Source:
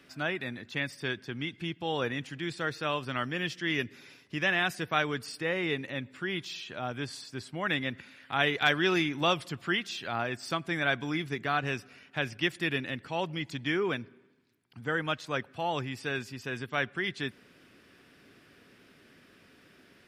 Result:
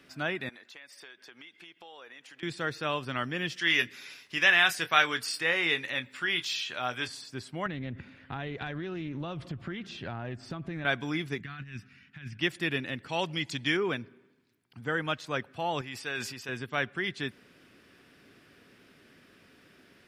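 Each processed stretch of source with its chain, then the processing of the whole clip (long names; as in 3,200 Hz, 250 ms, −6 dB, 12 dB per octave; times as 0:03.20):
0:00.49–0:02.43: high-pass filter 570 Hz + downward compressor 5 to 1, threshold −47 dBFS
0:03.56–0:07.08: tilt shelving filter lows −8 dB, about 650 Hz + double-tracking delay 24 ms −11 dB
0:07.66–0:10.85: RIAA equalisation playback + downward compressor 16 to 1, threshold −32 dBFS + highs frequency-modulated by the lows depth 0.14 ms
0:11.40–0:12.40: drawn EQ curve 200 Hz 0 dB, 560 Hz −26 dB, 1,800 Hz −5 dB, 12,000 Hz −16 dB + compressor whose output falls as the input rises −40 dBFS, ratio −0.5
0:13.09–0:13.77: low-pass filter 11,000 Hz + high-shelf EQ 2,700 Hz +9.5 dB
0:15.81–0:16.49: low-shelf EQ 420 Hz −10.5 dB + level that may fall only so fast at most 49 dB per second
whole clip: no processing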